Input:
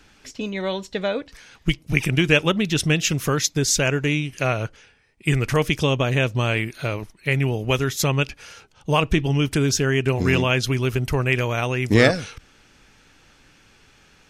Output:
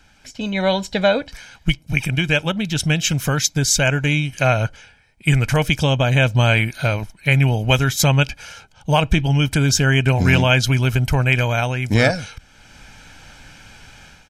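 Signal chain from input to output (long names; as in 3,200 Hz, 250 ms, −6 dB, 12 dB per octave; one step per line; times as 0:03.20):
comb filter 1.3 ms, depth 56%
automatic gain control
level −2 dB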